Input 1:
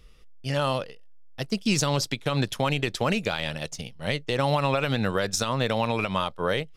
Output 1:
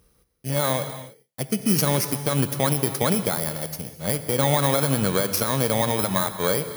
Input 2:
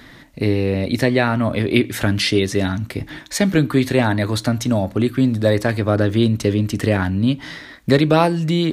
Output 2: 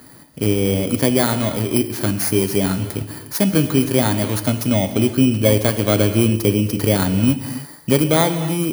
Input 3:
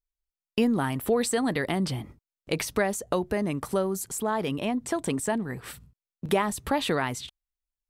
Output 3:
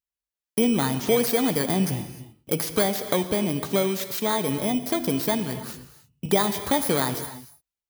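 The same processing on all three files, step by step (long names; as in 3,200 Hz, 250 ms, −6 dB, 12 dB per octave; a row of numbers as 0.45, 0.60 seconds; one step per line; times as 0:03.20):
samples in bit-reversed order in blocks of 16 samples
high-pass filter 77 Hz
automatic gain control gain up to 4 dB
reverb whose tail is shaped and stops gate 330 ms flat, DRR 9.5 dB
level −1 dB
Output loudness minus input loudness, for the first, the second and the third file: +4.0, +0.5, +4.0 LU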